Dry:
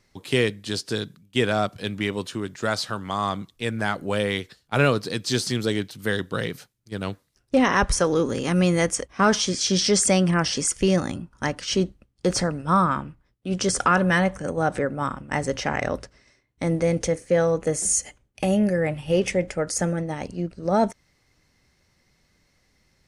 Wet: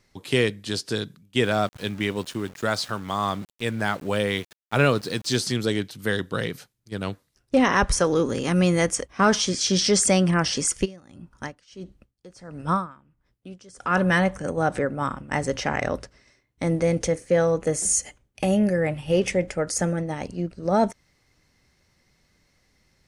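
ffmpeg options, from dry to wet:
-filter_complex "[0:a]asettb=1/sr,asplit=3[a][b][c];[a]atrim=end=1.434[d];[b]atrim=start=1.43:end=5.37,asetpts=PTS-STARTPTS,afade=t=in:d=0.004:c=qsin,afade=t=out:st=3.936:d=0.004:c=qsin,aeval=exprs='val(0)*gte(abs(val(0)),0.00891)':c=same[e];[c]atrim=start=5.366[f];[d][e]acrossfade=d=0.004:c1=hsin:c2=qsin[g];[g][f]acrossfade=d=0.004:c1=qsin:c2=hsin,asplit=3[h][i][j];[h]afade=t=out:st=10.84:d=0.02[k];[i]aeval=exprs='val(0)*pow(10,-26*(0.5-0.5*cos(2*PI*1.5*n/s))/20)':c=same,afade=t=in:st=10.84:d=0.02,afade=t=out:st=14.04:d=0.02[l];[j]afade=t=in:st=14.04:d=0.02[m];[k][l][m]amix=inputs=3:normalize=0"

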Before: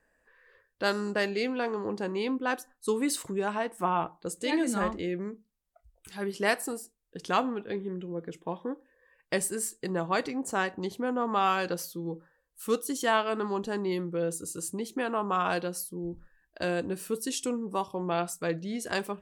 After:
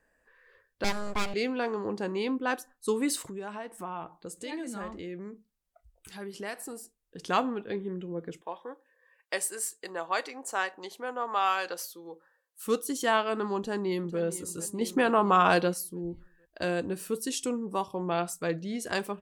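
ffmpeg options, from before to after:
-filter_complex "[0:a]asettb=1/sr,asplit=3[a][b][c];[a]atrim=end=0.844[d];[b]atrim=start=0.84:end=1.34,asetpts=PTS-STARTPTS,afade=t=in:d=0.004:c=qsin,afade=t=out:st=0.496:d=0.004:c=qsin,aeval=exprs='abs(val(0))':c=same[e];[c]atrim=start=1.336[f];[d][e]acrossfade=d=0.004:c1=hsin:c2=qsin[g];[g][f]acrossfade=d=0.004:c1=qsin:c2=hsin,asettb=1/sr,asplit=3[h][i][j];[h]atrim=end=3.264[k];[i]atrim=start=3.26:end=7.18,asetpts=PTS-STARTPTS,afade=t=in:d=0.004:c=qsin,afade=t=out:st=3.916:d=0.004:c=qsin,acompressor=threshold=-41dB:ratio=2:attack=3.2:release=140:knee=1:detection=peak[l];[j]atrim=start=7.176[m];[k][l]acrossfade=d=0.004:c1=hsin:c2=qsin[n];[n][m]acrossfade=d=0.004:c1=qsin:c2=hsin,asettb=1/sr,asplit=3[o][p][q];[o]atrim=end=8.414[r];[p]atrim=start=8.41:end=12.65,asetpts=PTS-STARTPTS,afade=t=in:d=0.004:c=qsin,afade=t=out:st=4.236:d=0.004:c=qsin,highpass=590[s];[q]atrim=start=12.646[t];[r][s]acrossfade=d=0.004:c1=hsin:c2=qsin[u];[u][t]acrossfade=d=0.004:c1=qsin:c2=hsin,asplit=2[v][w];[w]afade=t=in:st=13.58:d=0.01,afade=t=out:st=14.2:d=0.01,aecho=0:1:450|900|1350|1800|2250:0.188365|0.103601|0.0569804|0.0313392|0.0172366[x];[v][x]amix=inputs=2:normalize=0,asettb=1/sr,asplit=3[y][z][aa];[y]atrim=end=14.814[ab];[z]atrim=start=14.81:end=15.74,asetpts=PTS-STARTPTS,afade=t=in:d=0.004:c=qsin,afade=t=out:st=0.926:d=0.004:c=qsin,acontrast=61[ac];[aa]atrim=start=15.736[ad];[ab][ac]acrossfade=d=0.004:c1=hsin:c2=qsin[ae];[ae][ad]acrossfade=d=0.004:c1=qsin:c2=hsin"

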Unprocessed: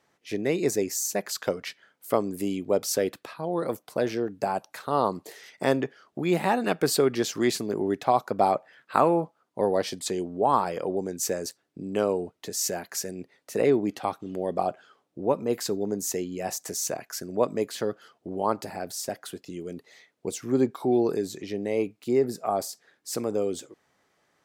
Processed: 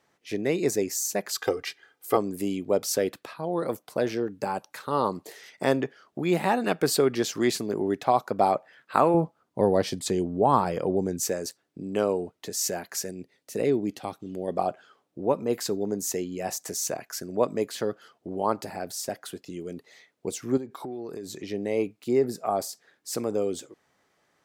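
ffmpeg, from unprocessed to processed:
-filter_complex "[0:a]asettb=1/sr,asplit=3[a][b][c];[a]atrim=end=1.334[d];[b]atrim=start=1.33:end=2.17,asetpts=PTS-STARTPTS,afade=t=in:d=0.004:c=qsin,afade=t=out:st=0.836:d=0.004:c=qsin,aecho=1:1:2.5:0.84,atrim=end_sample=37044[e];[c]atrim=start=2.166[f];[d][e]acrossfade=d=0.004:c1=hsin:c2=qsin[g];[g][f]acrossfade=d=0.004:c1=qsin:c2=hsin,asettb=1/sr,asplit=3[h][i][j];[h]atrim=end=4.214[k];[i]atrim=start=4.21:end=5.1,asetpts=PTS-STARTPTS,afade=t=in:d=0.004:c=qsin,afade=t=out:st=0.886:d=0.004:c=qsin,bandreject=f=690:w=5.3[l];[j]atrim=start=5.096[m];[k][l]acrossfade=d=0.004:c1=hsin:c2=qsin[n];[n][m]acrossfade=d=0.004:c1=qsin:c2=hsin,asettb=1/sr,asplit=3[o][p][q];[o]atrim=end=9.144[r];[p]atrim=start=9.14:end=11.23,asetpts=PTS-STARTPTS,afade=t=in:d=0.004:c=qsin,afade=t=out:st=2.086:d=0.004:c=qsin,lowshelf=f=210:g=11.5[s];[q]atrim=start=11.226[t];[r][s]acrossfade=d=0.004:c1=hsin:c2=qsin[u];[u][t]acrossfade=d=0.004:c1=qsin:c2=hsin,asettb=1/sr,asplit=3[v][w][x];[v]atrim=end=13.114[y];[w]atrim=start=13.11:end=14.48,asetpts=PTS-STARTPTS,afade=t=in:d=0.004:c=qsin,afade=t=out:st=1.366:d=0.004:c=qsin,equalizer=f=1.1k:w=0.62:g=-8[z];[x]atrim=start=14.476[aa];[y][z]acrossfade=d=0.004:c1=hsin:c2=qsin[ab];[ab][aa]acrossfade=d=0.004:c1=qsin:c2=hsin,asettb=1/sr,asplit=3[ac][ad][ae];[ac]atrim=end=20.574[af];[ad]atrim=start=20.57:end=21.39,asetpts=PTS-STARTPTS,afade=t=in:d=0.004:c=qsin,afade=t=out:st=0.816:d=0.004:c=qsin,acompressor=threshold=-32dB:ratio=12:attack=3.2:release=140:knee=1:detection=peak[ag];[ae]atrim=start=21.386[ah];[af][ag]acrossfade=d=0.004:c1=hsin:c2=qsin[ai];[ai][ah]acrossfade=d=0.004:c1=qsin:c2=hsin"

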